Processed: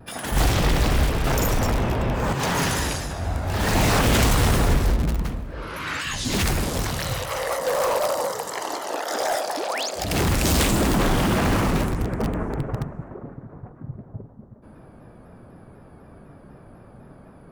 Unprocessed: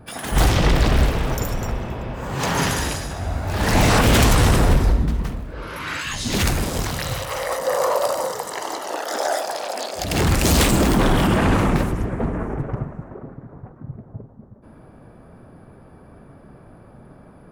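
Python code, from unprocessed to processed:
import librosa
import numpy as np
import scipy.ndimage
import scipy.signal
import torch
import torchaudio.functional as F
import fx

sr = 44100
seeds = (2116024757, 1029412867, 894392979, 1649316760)

p1 = fx.leveller(x, sr, passes=2, at=(1.24, 2.33))
p2 = fx.spec_paint(p1, sr, seeds[0], shape='rise', start_s=9.57, length_s=0.33, low_hz=250.0, high_hz=7700.0, level_db=-29.0)
p3 = (np.mod(10.0 ** (15.0 / 20.0) * p2 + 1.0, 2.0) - 1.0) / 10.0 ** (15.0 / 20.0)
p4 = p2 + (p3 * librosa.db_to_amplitude(-9.0))
p5 = fx.vibrato_shape(p4, sr, shape='saw_down', rate_hz=4.0, depth_cents=100.0)
y = p5 * librosa.db_to_amplitude(-3.5)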